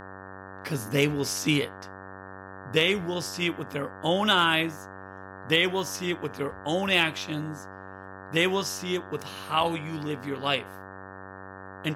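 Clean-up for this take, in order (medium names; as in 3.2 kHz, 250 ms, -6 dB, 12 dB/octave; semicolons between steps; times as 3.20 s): clip repair -11 dBFS; de-hum 95.5 Hz, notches 19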